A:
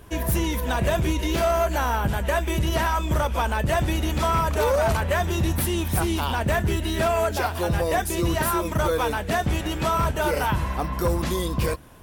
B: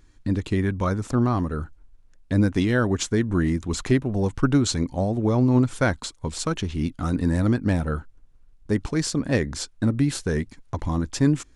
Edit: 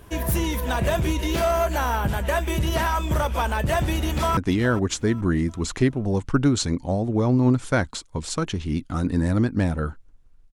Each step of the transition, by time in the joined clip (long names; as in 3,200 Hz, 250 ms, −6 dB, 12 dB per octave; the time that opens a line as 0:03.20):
A
0:04.05–0:04.37: delay throw 420 ms, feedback 40%, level −15.5 dB
0:04.37: continue with B from 0:02.46